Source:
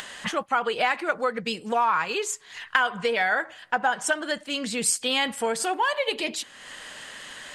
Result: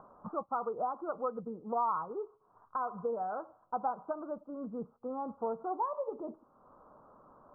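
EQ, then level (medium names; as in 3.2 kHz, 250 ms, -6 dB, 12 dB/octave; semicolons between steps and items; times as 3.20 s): steep low-pass 1.3 kHz 96 dB/octave; -8.5 dB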